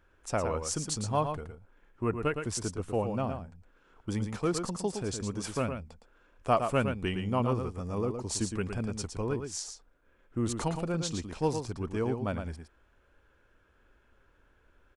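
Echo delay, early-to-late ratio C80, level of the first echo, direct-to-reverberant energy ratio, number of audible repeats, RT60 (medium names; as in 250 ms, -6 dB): 113 ms, no reverb, -7.0 dB, no reverb, 1, no reverb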